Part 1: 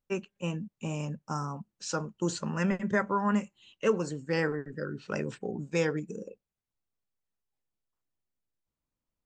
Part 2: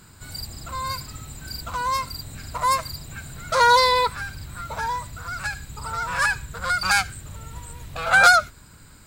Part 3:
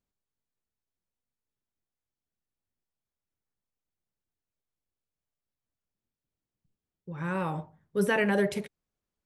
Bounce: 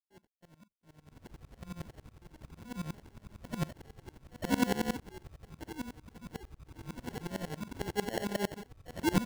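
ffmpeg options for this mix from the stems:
-filter_complex "[0:a]acompressor=threshold=0.0251:ratio=6,asoftclip=type=hard:threshold=0.0112,volume=0.282[s0];[1:a]highshelf=f=12000:g=-10.5,aecho=1:1:2:0.59,adelay=900,volume=0.282[s1];[2:a]volume=0.841,asplit=2[s2][s3];[s3]apad=whole_len=439329[s4];[s1][s4]sidechaincompress=threshold=0.01:ratio=8:attack=7.8:release=129[s5];[s0][s5][s2]amix=inputs=3:normalize=0,agate=range=0.0224:threshold=0.00158:ratio=3:detection=peak,acrusher=samples=36:mix=1:aa=0.000001,aeval=exprs='val(0)*pow(10,-23*if(lt(mod(-11*n/s,1),2*abs(-11)/1000),1-mod(-11*n/s,1)/(2*abs(-11)/1000),(mod(-11*n/s,1)-2*abs(-11)/1000)/(1-2*abs(-11)/1000))/20)':c=same"

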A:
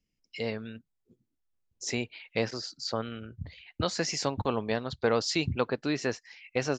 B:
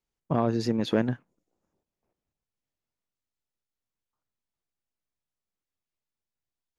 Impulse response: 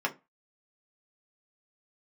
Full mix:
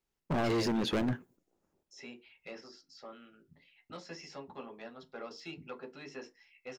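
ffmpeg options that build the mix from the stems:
-filter_complex "[0:a]aemphasis=mode=production:type=50kf,acrossover=split=4400[s0][s1];[s1]acompressor=threshold=0.02:ratio=4:attack=1:release=60[s2];[s0][s2]amix=inputs=2:normalize=0,asoftclip=type=tanh:threshold=0.133,adelay=100,volume=0.75,asplit=2[s3][s4];[s4]volume=0.0891[s5];[1:a]volume=1,asplit=3[s6][s7][s8];[s7]volume=0.0944[s9];[s8]apad=whole_len=303449[s10];[s3][s10]sidechaingate=range=0.0316:threshold=0.00158:ratio=16:detection=peak[s11];[2:a]atrim=start_sample=2205[s12];[s5][s9]amix=inputs=2:normalize=0[s13];[s13][s12]afir=irnorm=-1:irlink=0[s14];[s11][s6][s14]amix=inputs=3:normalize=0,equalizer=f=360:t=o:w=0.55:g=4,asoftclip=type=hard:threshold=0.0447"

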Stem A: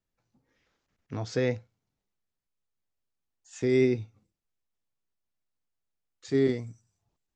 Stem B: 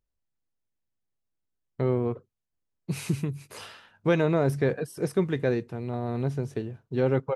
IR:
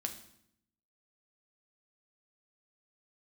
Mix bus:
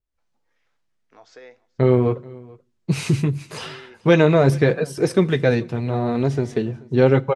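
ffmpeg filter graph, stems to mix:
-filter_complex "[0:a]highpass=630,highshelf=f=3700:g=-8.5,acompressor=threshold=0.02:ratio=6,volume=0.282,afade=t=out:st=0.69:d=0.21:silence=0.375837,asplit=3[s0][s1][s2];[s1]volume=0.251[s3];[s2]volume=0.0944[s4];[1:a]lowpass=7400,flanger=delay=2.3:depth=6.2:regen=-39:speed=0.79:shape=triangular,adynamicequalizer=threshold=0.00631:dfrequency=2100:dqfactor=0.7:tfrequency=2100:tqfactor=0.7:attack=5:release=100:ratio=0.375:range=2.5:mode=boostabove:tftype=highshelf,volume=0.944,asplit=3[s5][s6][s7];[s6]volume=0.211[s8];[s7]volume=0.075[s9];[2:a]atrim=start_sample=2205[s10];[s3][s8]amix=inputs=2:normalize=0[s11];[s11][s10]afir=irnorm=-1:irlink=0[s12];[s4][s9]amix=inputs=2:normalize=0,aecho=0:1:432:1[s13];[s0][s5][s12][s13]amix=inputs=4:normalize=0,dynaudnorm=f=110:g=3:m=3.98"

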